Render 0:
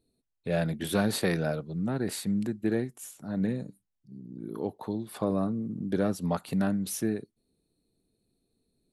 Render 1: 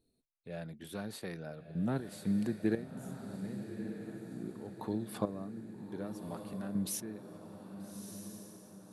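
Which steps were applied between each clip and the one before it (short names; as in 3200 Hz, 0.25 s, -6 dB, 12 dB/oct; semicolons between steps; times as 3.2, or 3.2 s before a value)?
step gate "x......x.x" 60 bpm -12 dB; diffused feedback echo 1.262 s, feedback 50%, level -8.5 dB; gain -3 dB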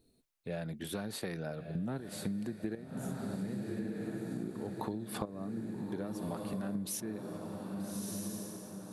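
compressor 16:1, threshold -41 dBFS, peak gain reduction 16.5 dB; gain +7.5 dB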